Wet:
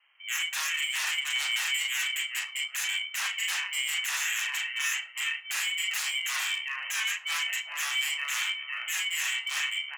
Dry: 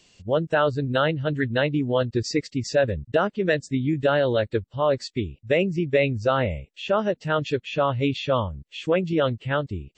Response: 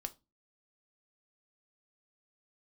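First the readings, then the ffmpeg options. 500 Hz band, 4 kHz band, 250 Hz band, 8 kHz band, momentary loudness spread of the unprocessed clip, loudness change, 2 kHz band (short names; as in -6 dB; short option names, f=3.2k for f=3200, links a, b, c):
under -40 dB, +6.5 dB, under -40 dB, +13.5 dB, 5 LU, -4.5 dB, +2.5 dB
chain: -filter_complex "[0:a]acrusher=bits=5:mode=log:mix=0:aa=0.000001,lowpass=f=2.4k:t=q:w=0.5098,lowpass=f=2.4k:t=q:w=0.6013,lowpass=f=2.4k:t=q:w=0.9,lowpass=f=2.4k:t=q:w=2.563,afreqshift=-2800,asplit=2[a][b];[b]aecho=0:1:396|792|1188:0.237|0.0522|0.0115[c];[a][c]amix=inputs=2:normalize=0,aeval=exprs='0.0668*(abs(mod(val(0)/0.0668+3,4)-2)-1)':c=same,asplit=2[d][e];[e]adelay=70,lowpass=f=1.3k:p=1,volume=-14.5dB,asplit=2[f][g];[g]adelay=70,lowpass=f=1.3k:p=1,volume=0.52,asplit=2[h][i];[i]adelay=70,lowpass=f=1.3k:p=1,volume=0.52,asplit=2[j][k];[k]adelay=70,lowpass=f=1.3k:p=1,volume=0.52,asplit=2[l][m];[m]adelay=70,lowpass=f=1.3k:p=1,volume=0.52[n];[d][f][h][j][l][n]amix=inputs=6:normalize=0,asplit=2[o][p];[1:a]atrim=start_sample=2205,lowpass=6.7k,adelay=35[q];[p][q]afir=irnorm=-1:irlink=0,volume=2.5dB[r];[o][r]amix=inputs=2:normalize=0,aeval=exprs='val(0)*sin(2*PI*390*n/s)':c=same,highpass=f=960:w=0.5412,highpass=f=960:w=1.3066,volume=-1dB"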